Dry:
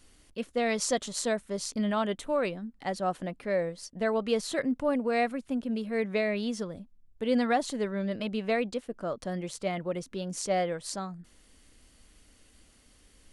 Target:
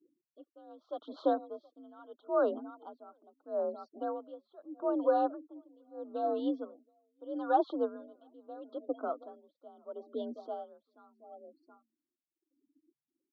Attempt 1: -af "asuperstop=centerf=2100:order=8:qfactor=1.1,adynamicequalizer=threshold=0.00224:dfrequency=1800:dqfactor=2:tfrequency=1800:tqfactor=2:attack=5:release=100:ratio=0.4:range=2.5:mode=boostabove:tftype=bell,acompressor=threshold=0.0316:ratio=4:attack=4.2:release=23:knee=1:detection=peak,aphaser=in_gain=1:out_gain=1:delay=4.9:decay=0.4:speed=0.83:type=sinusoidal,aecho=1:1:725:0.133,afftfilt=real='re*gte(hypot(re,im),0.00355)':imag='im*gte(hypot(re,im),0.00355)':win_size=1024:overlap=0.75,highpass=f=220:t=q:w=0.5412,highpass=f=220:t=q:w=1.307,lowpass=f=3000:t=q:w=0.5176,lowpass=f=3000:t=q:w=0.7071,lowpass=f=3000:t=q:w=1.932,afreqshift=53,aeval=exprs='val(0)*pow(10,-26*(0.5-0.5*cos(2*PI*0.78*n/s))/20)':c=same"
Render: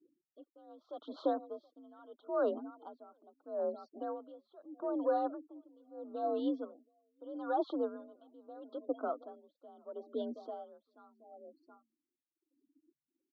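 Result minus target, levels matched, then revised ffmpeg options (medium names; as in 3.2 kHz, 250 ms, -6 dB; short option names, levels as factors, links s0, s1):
compression: peak gain reduction +7.5 dB
-af "asuperstop=centerf=2100:order=8:qfactor=1.1,adynamicequalizer=threshold=0.00224:dfrequency=1800:dqfactor=2:tfrequency=1800:tqfactor=2:attack=5:release=100:ratio=0.4:range=2.5:mode=boostabove:tftype=bell,aphaser=in_gain=1:out_gain=1:delay=4.9:decay=0.4:speed=0.83:type=sinusoidal,aecho=1:1:725:0.133,afftfilt=real='re*gte(hypot(re,im),0.00355)':imag='im*gte(hypot(re,im),0.00355)':win_size=1024:overlap=0.75,highpass=f=220:t=q:w=0.5412,highpass=f=220:t=q:w=1.307,lowpass=f=3000:t=q:w=0.5176,lowpass=f=3000:t=q:w=0.7071,lowpass=f=3000:t=q:w=1.932,afreqshift=53,aeval=exprs='val(0)*pow(10,-26*(0.5-0.5*cos(2*PI*0.78*n/s))/20)':c=same"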